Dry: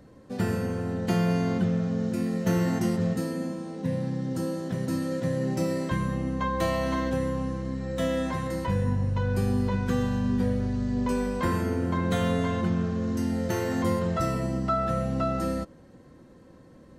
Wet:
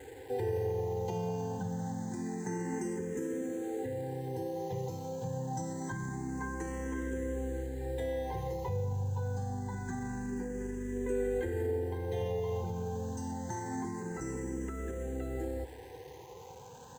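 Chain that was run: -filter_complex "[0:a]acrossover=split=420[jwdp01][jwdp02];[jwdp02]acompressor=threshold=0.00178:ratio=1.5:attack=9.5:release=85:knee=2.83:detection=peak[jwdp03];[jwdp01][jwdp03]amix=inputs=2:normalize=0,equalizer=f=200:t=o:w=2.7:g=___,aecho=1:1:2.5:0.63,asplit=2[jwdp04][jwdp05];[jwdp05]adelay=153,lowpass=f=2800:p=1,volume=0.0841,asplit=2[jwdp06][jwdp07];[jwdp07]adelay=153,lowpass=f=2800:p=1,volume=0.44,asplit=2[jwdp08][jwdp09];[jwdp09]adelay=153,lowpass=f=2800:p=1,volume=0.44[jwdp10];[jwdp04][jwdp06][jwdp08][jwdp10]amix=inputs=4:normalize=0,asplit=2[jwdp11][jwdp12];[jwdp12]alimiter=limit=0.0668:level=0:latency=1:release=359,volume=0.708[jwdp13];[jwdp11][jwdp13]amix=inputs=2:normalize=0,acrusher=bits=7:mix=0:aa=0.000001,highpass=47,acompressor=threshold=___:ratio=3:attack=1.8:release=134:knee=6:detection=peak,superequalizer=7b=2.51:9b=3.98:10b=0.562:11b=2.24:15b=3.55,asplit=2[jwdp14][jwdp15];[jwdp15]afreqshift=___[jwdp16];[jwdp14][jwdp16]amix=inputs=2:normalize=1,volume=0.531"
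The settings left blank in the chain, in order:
2, 0.0501, 0.26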